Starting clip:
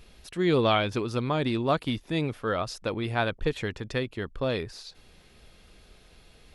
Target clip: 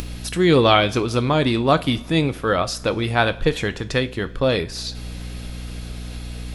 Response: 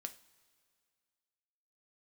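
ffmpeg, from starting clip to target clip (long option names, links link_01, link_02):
-filter_complex "[0:a]aeval=exprs='val(0)+0.00501*(sin(2*PI*60*n/s)+sin(2*PI*2*60*n/s)/2+sin(2*PI*3*60*n/s)/3+sin(2*PI*4*60*n/s)/4+sin(2*PI*5*60*n/s)/5)':channel_layout=same,acompressor=mode=upward:threshold=-31dB:ratio=2.5,asplit=2[link_01][link_02];[1:a]atrim=start_sample=2205,highshelf=frequency=4500:gain=7[link_03];[link_02][link_03]afir=irnorm=-1:irlink=0,volume=9.5dB[link_04];[link_01][link_04]amix=inputs=2:normalize=0,volume=-1dB"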